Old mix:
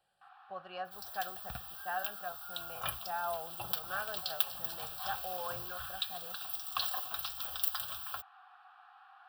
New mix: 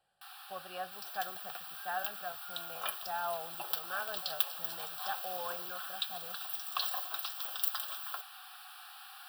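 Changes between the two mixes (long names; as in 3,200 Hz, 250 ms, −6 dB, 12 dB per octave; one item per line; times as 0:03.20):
first sound: remove low-pass filter 1,100 Hz 12 dB per octave
second sound: add Butterworth high-pass 320 Hz 36 dB per octave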